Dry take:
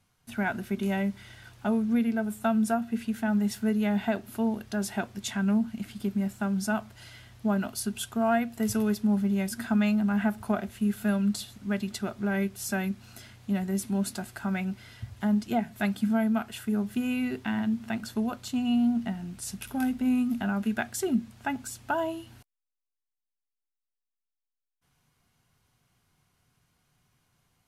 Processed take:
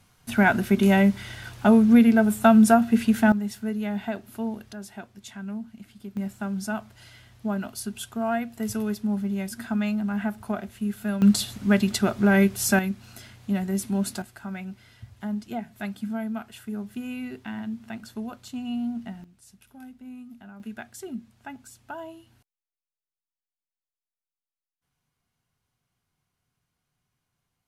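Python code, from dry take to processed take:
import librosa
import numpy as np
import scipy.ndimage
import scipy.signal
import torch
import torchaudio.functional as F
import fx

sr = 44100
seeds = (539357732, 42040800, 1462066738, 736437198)

y = fx.gain(x, sr, db=fx.steps((0.0, 10.0), (3.32, -2.5), (4.73, -9.0), (6.17, -1.5), (11.22, 9.5), (12.79, 2.5), (14.22, -5.0), (19.24, -16.5), (20.6, -9.0)))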